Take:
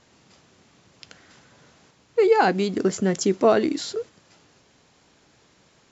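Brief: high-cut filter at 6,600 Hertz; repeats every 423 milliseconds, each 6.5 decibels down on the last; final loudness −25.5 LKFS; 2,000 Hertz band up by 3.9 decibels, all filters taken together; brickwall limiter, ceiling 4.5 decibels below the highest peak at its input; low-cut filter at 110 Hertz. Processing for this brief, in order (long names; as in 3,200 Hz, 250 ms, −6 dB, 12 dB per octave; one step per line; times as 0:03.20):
high-pass filter 110 Hz
low-pass filter 6,600 Hz
parametric band 2,000 Hz +5.5 dB
brickwall limiter −10 dBFS
repeating echo 423 ms, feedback 47%, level −6.5 dB
level −3 dB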